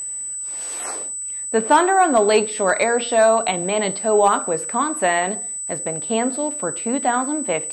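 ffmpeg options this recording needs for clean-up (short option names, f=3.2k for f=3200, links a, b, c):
-af "bandreject=f=8k:w=30"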